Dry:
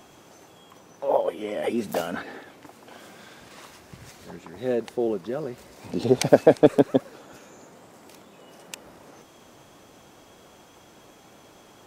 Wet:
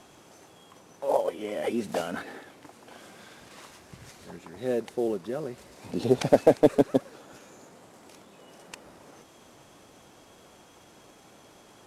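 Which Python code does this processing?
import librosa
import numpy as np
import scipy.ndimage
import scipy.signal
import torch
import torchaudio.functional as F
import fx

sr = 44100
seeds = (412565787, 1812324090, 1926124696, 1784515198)

y = fx.cvsd(x, sr, bps=64000)
y = F.gain(torch.from_numpy(y), -2.5).numpy()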